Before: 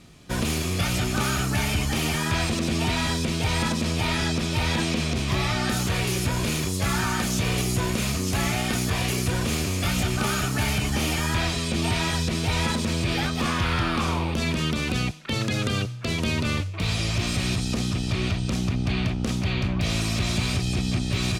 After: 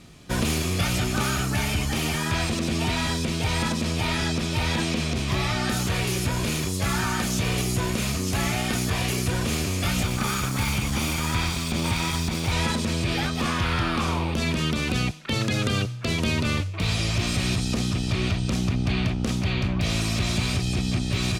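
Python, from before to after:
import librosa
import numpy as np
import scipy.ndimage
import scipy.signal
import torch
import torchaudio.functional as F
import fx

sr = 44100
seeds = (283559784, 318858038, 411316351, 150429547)

y = fx.lower_of_two(x, sr, delay_ms=0.87, at=(10.03, 12.52))
y = fx.rider(y, sr, range_db=3, speed_s=2.0)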